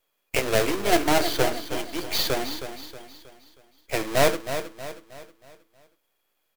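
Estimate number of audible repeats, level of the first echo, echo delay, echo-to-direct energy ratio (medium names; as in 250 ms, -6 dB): 4, -10.0 dB, 317 ms, -9.0 dB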